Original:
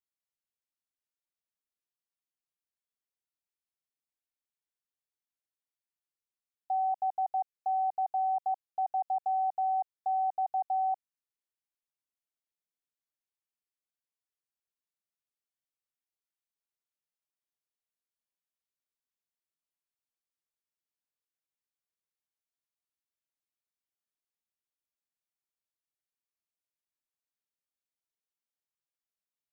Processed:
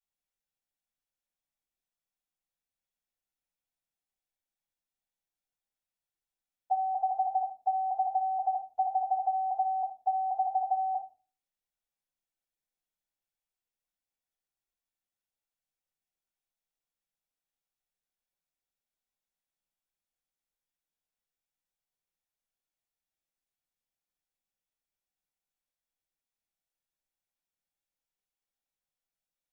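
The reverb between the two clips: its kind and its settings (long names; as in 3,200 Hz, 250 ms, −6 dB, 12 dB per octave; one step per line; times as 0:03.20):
rectangular room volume 190 cubic metres, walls furnished, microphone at 6.2 metres
level −11 dB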